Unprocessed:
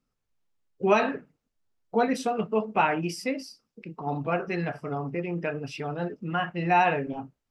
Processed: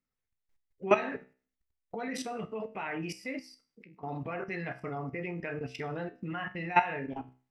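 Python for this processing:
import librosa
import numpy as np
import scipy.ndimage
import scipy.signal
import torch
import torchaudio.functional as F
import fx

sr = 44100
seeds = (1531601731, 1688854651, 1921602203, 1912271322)

y = fx.peak_eq(x, sr, hz=2000.0, db=9.5, octaves=0.44)
y = fx.level_steps(y, sr, step_db=18)
y = fx.comb_fb(y, sr, f0_hz=64.0, decay_s=0.38, harmonics='all', damping=0.0, mix_pct=60)
y = y * 10.0 ** (5.0 / 20.0)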